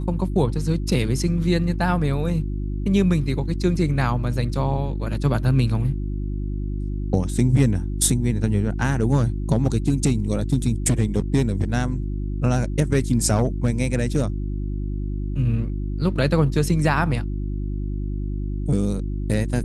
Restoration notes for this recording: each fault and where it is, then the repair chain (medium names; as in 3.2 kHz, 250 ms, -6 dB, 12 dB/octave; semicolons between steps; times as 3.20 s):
hum 50 Hz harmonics 7 -26 dBFS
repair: de-hum 50 Hz, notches 7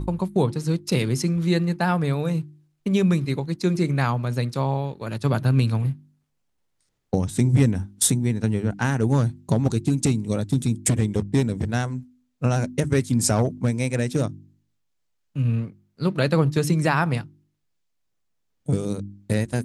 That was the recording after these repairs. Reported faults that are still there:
nothing left